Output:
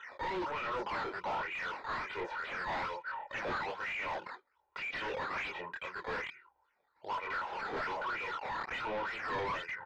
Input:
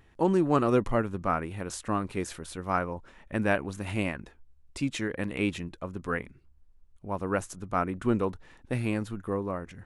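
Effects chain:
0:07.30–0:09.46: converter with a step at zero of −34 dBFS
de-essing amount 75%
high-shelf EQ 4,400 Hz +8 dB
comb filter 2.1 ms, depth 98%
brickwall limiter −16 dBFS, peak gain reduction 7.5 dB
LFO wah 2.1 Hz 730–2,400 Hz, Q 8
sample-and-hold swept by an LFO 9×, swing 160% 1.2 Hz
multi-voice chorus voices 4, 1.2 Hz, delay 25 ms, depth 3 ms
mid-hump overdrive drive 36 dB, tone 3,700 Hz, clips at −27.5 dBFS
high-frequency loss of the air 220 metres

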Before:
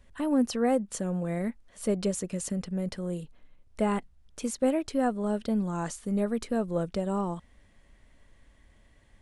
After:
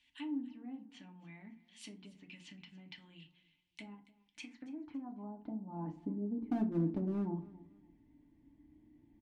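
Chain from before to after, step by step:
treble cut that deepens with the level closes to 490 Hz, closed at −24 dBFS
drawn EQ curve 290 Hz 0 dB, 500 Hz −28 dB, 880 Hz −8 dB, 1,300 Hz −20 dB, 2,200 Hz −6 dB
0:03.94–0:06.49: downward compressor, threshold −34 dBFS, peak gain reduction 9 dB
band-pass filter sweep 3,000 Hz → 390 Hz, 0:04.03–0:06.12
hard clipping −38.5 dBFS, distortion −16 dB
repeating echo 280 ms, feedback 27%, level −20 dB
feedback delay network reverb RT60 0.36 s, low-frequency decay 1.25×, high-frequency decay 0.6×, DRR 3 dB
level +10 dB

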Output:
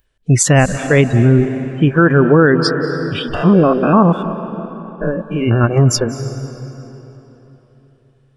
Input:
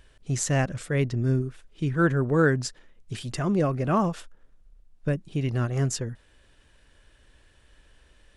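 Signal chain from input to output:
0:03.34–0:05.64: spectrum averaged block by block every 100 ms
noise reduction from a noise print of the clip's start 27 dB
0:05.78–0:05.99: gain on a spectral selection 1,300–4,600 Hz −14 dB
convolution reverb RT60 3.7 s, pre-delay 175 ms, DRR 12.5 dB
boost into a limiter +18.5 dB
level −1 dB

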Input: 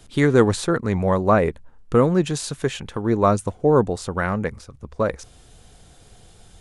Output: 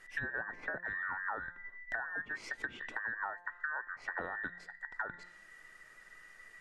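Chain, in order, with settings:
frequency inversion band by band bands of 2,000 Hz
0:00.66–0:01.18: de-essing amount 85%
treble cut that deepens with the level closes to 1,300 Hz, closed at −16.5 dBFS
high-shelf EQ 3,200 Hz −9.5 dB
hum removal 175.7 Hz, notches 28
downward compressor 10 to 1, threshold −29 dBFS, peak gain reduction 14.5 dB
level −6 dB

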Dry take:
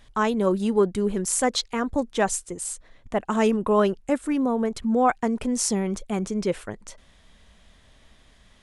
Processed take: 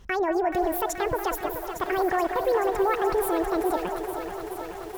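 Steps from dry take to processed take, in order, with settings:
wrong playback speed 45 rpm record played at 78 rpm
high-shelf EQ 2,900 Hz −10.5 dB
brickwall limiter −20.5 dBFS, peak gain reduction 10.5 dB
on a send: delay with a band-pass on its return 184 ms, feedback 42%, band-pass 960 Hz, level −6.5 dB
on the sum: feedback echo at a low word length 429 ms, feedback 80%, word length 8 bits, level −9 dB
level +3 dB

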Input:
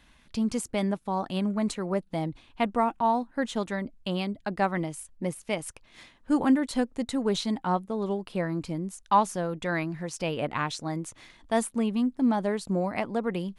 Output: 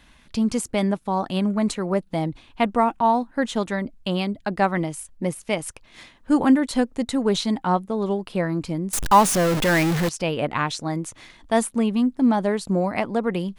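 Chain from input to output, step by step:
0:08.93–0:10.09: converter with a step at zero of −24.5 dBFS
level +5.5 dB

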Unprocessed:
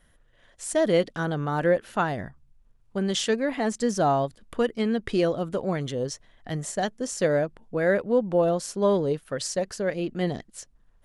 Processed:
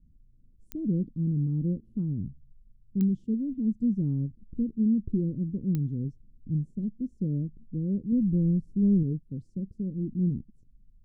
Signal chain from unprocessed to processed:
0:08.12–0:09.03: low-shelf EQ 140 Hz +10.5 dB
inverse Chebyshev low-pass filter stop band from 660 Hz, stop band 50 dB
digital clicks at 0:00.72/0:03.01/0:05.75, −23 dBFS
level +4 dB

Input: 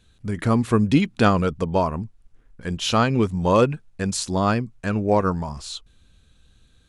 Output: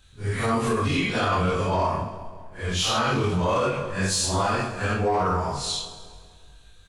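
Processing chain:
random phases in long frames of 200 ms
parametric band 220 Hz −10.5 dB 1.9 octaves
double-tracking delay 22 ms −2.5 dB
in parallel at −3.5 dB: soft clipping −19.5 dBFS, distortion −11 dB
on the sum: echo with a time of its own for lows and highs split 960 Hz, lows 191 ms, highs 133 ms, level −14.5 dB
brickwall limiter −15.5 dBFS, peak gain reduction 10 dB

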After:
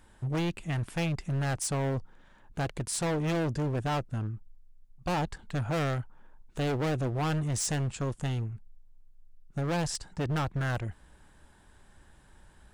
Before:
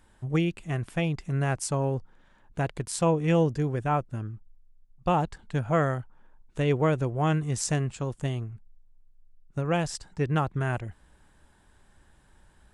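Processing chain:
hard clipping −29 dBFS, distortion −6 dB
level +2 dB

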